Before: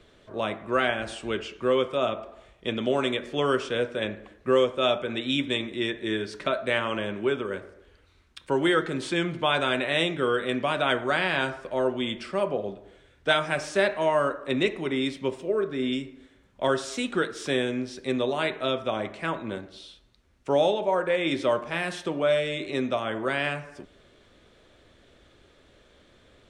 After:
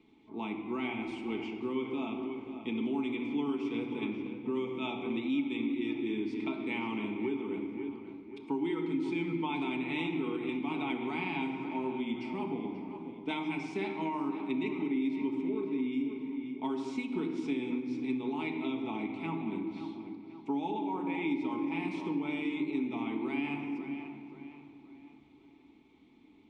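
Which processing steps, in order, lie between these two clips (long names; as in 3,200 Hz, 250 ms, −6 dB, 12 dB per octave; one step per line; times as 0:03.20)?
formant filter u
high-shelf EQ 6,800 Hz −7.5 dB
on a send: tape delay 533 ms, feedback 47%, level −11 dB, low-pass 3,000 Hz
on the sum: rectangular room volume 3,900 cubic metres, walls mixed, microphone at 1.5 metres
downward compressor 4 to 1, threshold −37 dBFS, peak gain reduction 9.5 dB
bass and treble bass +8 dB, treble +11 dB
mains-hum notches 50/100/150/200/250 Hz
level +5 dB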